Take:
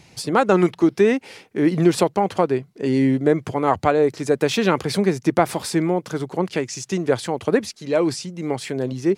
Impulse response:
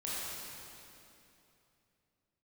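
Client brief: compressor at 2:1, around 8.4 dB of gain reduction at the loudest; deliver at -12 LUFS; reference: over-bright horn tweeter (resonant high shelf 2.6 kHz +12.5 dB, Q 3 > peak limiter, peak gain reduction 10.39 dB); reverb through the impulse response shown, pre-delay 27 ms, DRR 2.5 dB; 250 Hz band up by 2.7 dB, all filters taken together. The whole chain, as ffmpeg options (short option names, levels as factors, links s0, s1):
-filter_complex "[0:a]equalizer=f=250:t=o:g=4,acompressor=threshold=0.0562:ratio=2,asplit=2[s0][s1];[1:a]atrim=start_sample=2205,adelay=27[s2];[s1][s2]afir=irnorm=-1:irlink=0,volume=0.473[s3];[s0][s3]amix=inputs=2:normalize=0,highshelf=f=2600:t=q:w=3:g=12.5,volume=2.99,alimiter=limit=0.794:level=0:latency=1"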